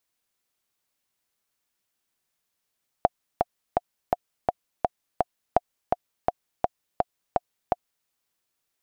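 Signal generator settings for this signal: metronome 167 bpm, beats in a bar 7, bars 2, 715 Hz, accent 3.5 dB -4 dBFS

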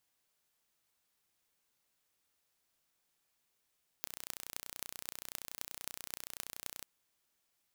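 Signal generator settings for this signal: pulse train 30.5/s, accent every 8, -10.5 dBFS 2.81 s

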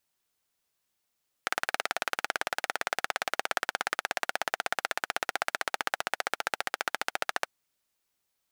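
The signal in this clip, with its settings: single-cylinder engine model, changing speed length 6.01 s, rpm 2200, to 1700, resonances 770/1400 Hz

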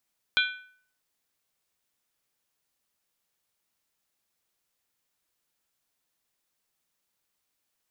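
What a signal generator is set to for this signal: skin hit, lowest mode 1500 Hz, modes 5, decay 0.55 s, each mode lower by 1.5 dB, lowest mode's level -21 dB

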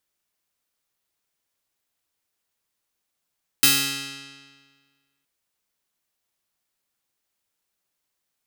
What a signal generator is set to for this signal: plucked string C#3, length 1.62 s, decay 1.63 s, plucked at 0.24, bright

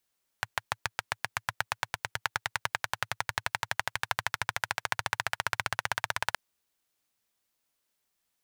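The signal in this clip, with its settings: single-cylinder engine model, changing speed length 5.92 s, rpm 800, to 2000, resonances 110/950/1500 Hz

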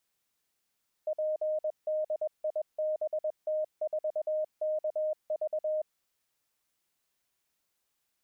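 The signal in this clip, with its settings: Morse "PDIBT4KV" 21 wpm 618 Hz -27.5 dBFS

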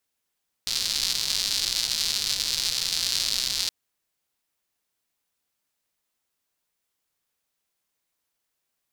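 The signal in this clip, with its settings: rain from filtered ticks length 3.02 s, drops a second 210, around 4400 Hz, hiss -18 dB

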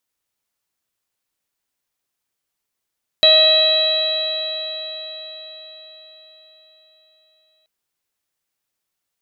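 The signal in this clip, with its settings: stretched partials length 4.43 s, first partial 627 Hz, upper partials -18/-13/-9/-8/5.5 dB, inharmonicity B 0.0025, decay 4.99 s, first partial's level -14 dB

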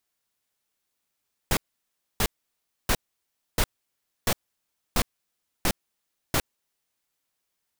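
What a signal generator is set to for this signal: noise bursts pink, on 0.06 s, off 0.63 s, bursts 8, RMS -22 dBFS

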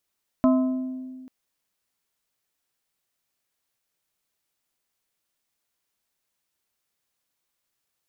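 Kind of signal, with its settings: glass hit plate, length 0.84 s, lowest mode 258 Hz, modes 4, decay 1.88 s, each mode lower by 6 dB, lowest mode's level -14.5 dB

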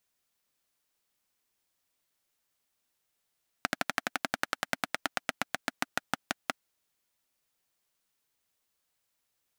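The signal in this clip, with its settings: single-cylinder engine model, changing speed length 2.87 s, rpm 1500, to 600, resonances 270/720/1400 Hz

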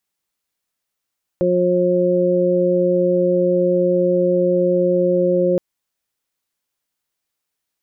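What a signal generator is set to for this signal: steady additive tone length 4.17 s, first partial 179 Hz, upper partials 3/5 dB, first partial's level -21 dB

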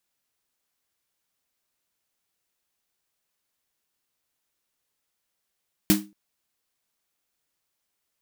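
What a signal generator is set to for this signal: snare drum length 0.23 s, tones 200 Hz, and 310 Hz, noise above 600 Hz, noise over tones -3.5 dB, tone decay 0.30 s, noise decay 0.22 s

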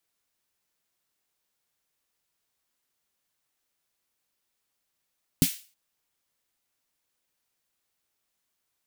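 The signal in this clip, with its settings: snare drum length 0.32 s, tones 170 Hz, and 260 Hz, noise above 2200 Hz, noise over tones -7.5 dB, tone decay 0.08 s, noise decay 0.37 s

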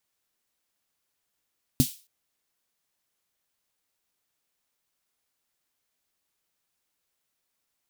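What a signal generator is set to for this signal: snare drum length 0.27 s, tones 140 Hz, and 250 Hz, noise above 3000 Hz, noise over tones -10 dB, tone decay 0.09 s, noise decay 0.35 s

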